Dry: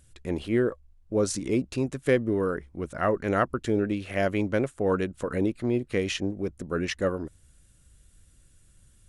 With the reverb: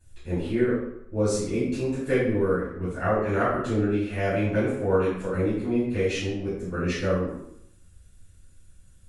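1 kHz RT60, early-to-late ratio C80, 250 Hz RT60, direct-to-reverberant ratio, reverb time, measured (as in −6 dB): 0.80 s, 4.5 dB, 0.80 s, −13.0 dB, 0.75 s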